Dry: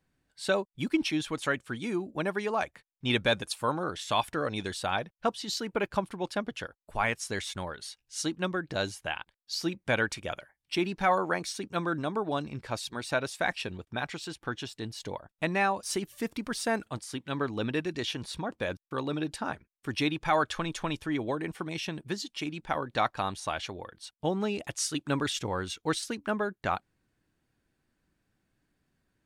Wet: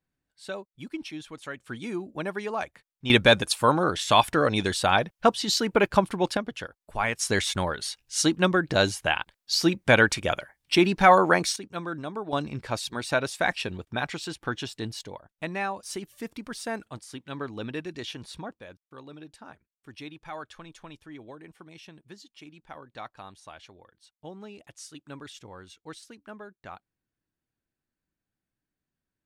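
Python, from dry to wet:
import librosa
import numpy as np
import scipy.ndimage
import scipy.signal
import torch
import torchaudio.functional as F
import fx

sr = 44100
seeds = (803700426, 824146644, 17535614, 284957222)

y = fx.gain(x, sr, db=fx.steps((0.0, -8.5), (1.61, -1.0), (3.1, 8.5), (6.37, 1.5), (7.19, 9.0), (11.56, -3.0), (12.33, 4.0), (15.01, -3.5), (18.52, -13.0)))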